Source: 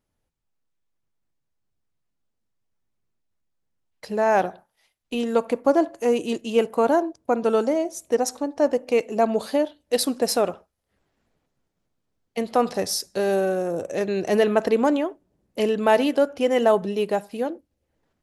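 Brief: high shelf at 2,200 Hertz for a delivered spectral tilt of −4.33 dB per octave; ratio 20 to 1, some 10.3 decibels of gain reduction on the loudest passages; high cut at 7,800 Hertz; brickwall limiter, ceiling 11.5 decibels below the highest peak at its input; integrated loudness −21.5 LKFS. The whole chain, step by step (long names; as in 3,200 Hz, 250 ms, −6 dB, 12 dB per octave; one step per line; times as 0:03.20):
low-pass filter 7,800 Hz
high-shelf EQ 2,200 Hz −4 dB
downward compressor 20 to 1, threshold −24 dBFS
level +13 dB
brickwall limiter −12 dBFS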